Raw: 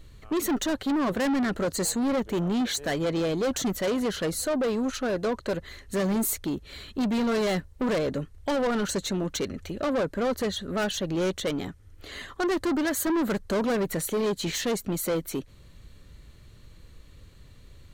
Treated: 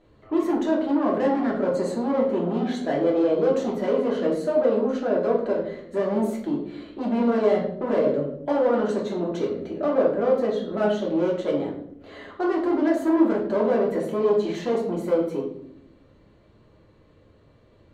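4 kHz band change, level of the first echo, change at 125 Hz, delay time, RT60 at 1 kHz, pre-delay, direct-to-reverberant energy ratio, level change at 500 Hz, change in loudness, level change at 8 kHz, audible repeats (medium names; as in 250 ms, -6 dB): -9.0 dB, no echo, -1.5 dB, no echo, 0.60 s, 3 ms, -3.5 dB, +6.5 dB, +4.0 dB, under -15 dB, no echo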